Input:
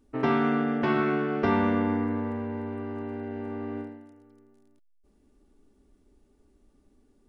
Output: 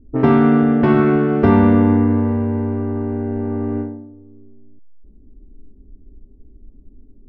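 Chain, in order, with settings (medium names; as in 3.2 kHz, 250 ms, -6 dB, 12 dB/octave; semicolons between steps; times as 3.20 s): level-controlled noise filter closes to 360 Hz, open at -24 dBFS; tilt EQ -3 dB/octave; trim +7 dB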